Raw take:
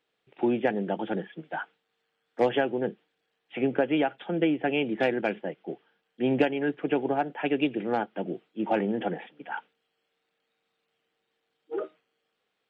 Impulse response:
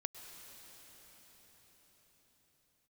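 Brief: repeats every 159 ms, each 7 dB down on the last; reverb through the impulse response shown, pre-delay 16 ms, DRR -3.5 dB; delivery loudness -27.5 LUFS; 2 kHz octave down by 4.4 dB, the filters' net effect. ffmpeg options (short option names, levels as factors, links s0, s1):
-filter_complex "[0:a]equalizer=f=2000:t=o:g=-6,aecho=1:1:159|318|477|636|795:0.447|0.201|0.0905|0.0407|0.0183,asplit=2[s0][s1];[1:a]atrim=start_sample=2205,adelay=16[s2];[s1][s2]afir=irnorm=-1:irlink=0,volume=1.78[s3];[s0][s3]amix=inputs=2:normalize=0,volume=0.631"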